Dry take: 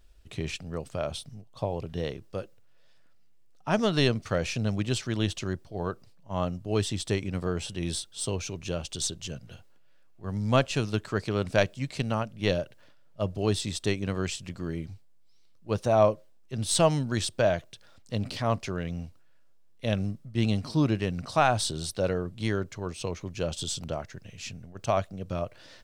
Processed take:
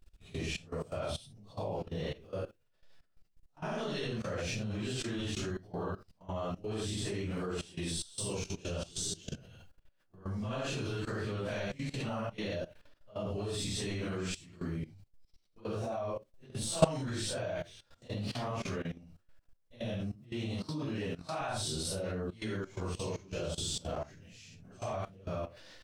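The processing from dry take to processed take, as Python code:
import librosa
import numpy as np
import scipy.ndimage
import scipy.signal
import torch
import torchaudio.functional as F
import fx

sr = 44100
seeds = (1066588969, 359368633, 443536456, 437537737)

y = fx.phase_scramble(x, sr, seeds[0], window_ms=200)
y = fx.low_shelf(y, sr, hz=190.0, db=-6.0, at=(7.32, 7.91))
y = fx.highpass(y, sr, hz=130.0, slope=6, at=(20.15, 21.41))
y = fx.level_steps(y, sr, step_db=18)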